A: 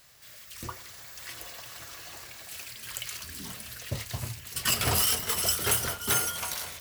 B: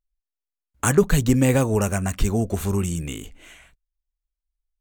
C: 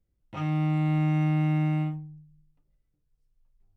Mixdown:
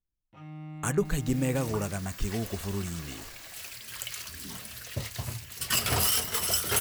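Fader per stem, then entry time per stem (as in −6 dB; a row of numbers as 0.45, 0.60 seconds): −0.5, −10.0, −16.0 decibels; 1.05, 0.00, 0.00 seconds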